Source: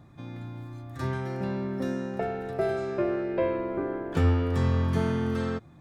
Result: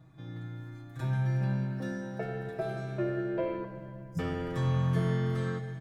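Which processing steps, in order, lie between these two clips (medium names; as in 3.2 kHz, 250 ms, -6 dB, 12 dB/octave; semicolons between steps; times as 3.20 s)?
3.64–4.19 s: brick-wall FIR band-stop 250–4800 Hz; comb 6.3 ms, depth 86%; reverberation RT60 2.7 s, pre-delay 4 ms, DRR 3.5 dB; trim -8 dB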